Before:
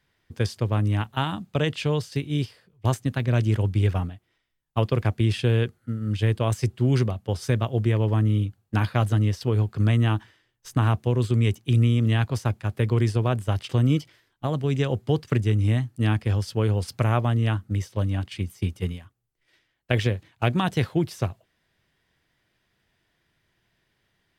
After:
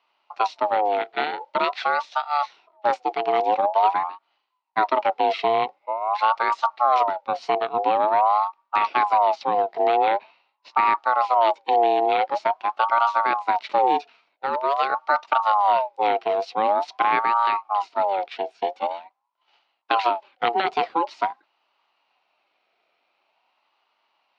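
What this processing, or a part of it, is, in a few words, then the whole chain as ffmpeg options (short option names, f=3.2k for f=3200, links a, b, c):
voice changer toy: -filter_complex "[0:a]aeval=exprs='val(0)*sin(2*PI*810*n/s+810*0.3/0.46*sin(2*PI*0.46*n/s))':c=same,highpass=460,equalizer=f=480:t=q:w=4:g=-8,equalizer=f=1.1k:t=q:w=4:g=-4,equalizer=f=1.7k:t=q:w=4:g=-6,equalizer=f=3.5k:t=q:w=4:g=-4,lowpass=f=4.1k:w=0.5412,lowpass=f=4.1k:w=1.3066,asettb=1/sr,asplit=3[a][b][c];[a]atrim=end=9.944[d];[b]atrim=start=9.94:end=10.86,asetpts=PTS-STARTPTS,afade=t=in:d=0.004:c=qsin,afade=t=out:st=0.916:d=0.004:c=qsin,lowpass=f=5.4k:w=0.5412,lowpass=f=5.4k:w=1.3066[e];[c]atrim=start=10.856[f];[d][e]acrossfade=d=0.004:c1=hsin:c2=qsin[g];[g][f]acrossfade=d=0.004:c1=qsin:c2=hsin,volume=7.5dB"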